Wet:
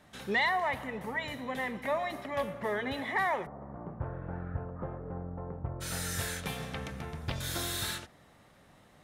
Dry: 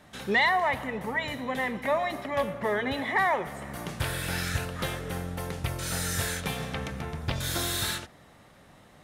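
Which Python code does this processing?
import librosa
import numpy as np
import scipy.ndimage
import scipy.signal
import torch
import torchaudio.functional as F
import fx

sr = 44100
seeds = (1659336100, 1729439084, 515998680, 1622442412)

y = fx.lowpass(x, sr, hz=1100.0, slope=24, at=(3.45, 5.8), fade=0.02)
y = y * 10.0 ** (-5.0 / 20.0)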